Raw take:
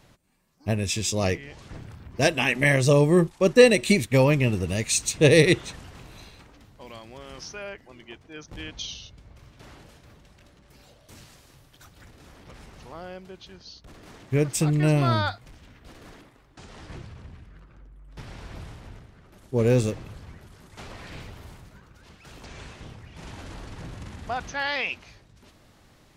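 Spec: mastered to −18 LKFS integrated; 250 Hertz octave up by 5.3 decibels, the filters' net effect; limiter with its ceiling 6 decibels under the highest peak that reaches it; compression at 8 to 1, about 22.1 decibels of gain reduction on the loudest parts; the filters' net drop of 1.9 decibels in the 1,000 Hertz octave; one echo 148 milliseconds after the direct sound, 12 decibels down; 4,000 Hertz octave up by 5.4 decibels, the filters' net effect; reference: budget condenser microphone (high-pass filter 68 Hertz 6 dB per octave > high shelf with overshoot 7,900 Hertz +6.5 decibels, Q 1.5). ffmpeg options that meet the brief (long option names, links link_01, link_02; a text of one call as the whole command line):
ffmpeg -i in.wav -af "equalizer=frequency=250:width_type=o:gain=8,equalizer=frequency=1000:width_type=o:gain=-3.5,equalizer=frequency=4000:width_type=o:gain=8,acompressor=threshold=-30dB:ratio=8,alimiter=level_in=0.5dB:limit=-24dB:level=0:latency=1,volume=-0.5dB,highpass=frequency=68:poles=1,highshelf=frequency=7900:width_type=q:width=1.5:gain=6.5,aecho=1:1:148:0.251,volume=20.5dB" out.wav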